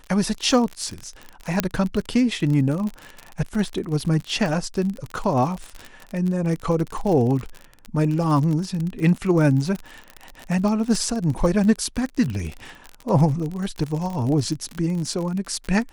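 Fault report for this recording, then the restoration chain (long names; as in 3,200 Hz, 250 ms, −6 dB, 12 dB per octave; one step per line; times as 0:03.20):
surface crackle 43 per second −26 dBFS
0:01.60: click −3 dBFS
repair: click removal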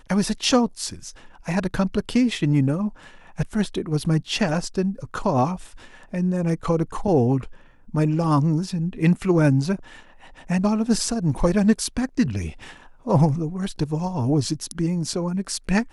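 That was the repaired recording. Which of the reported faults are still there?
none of them is left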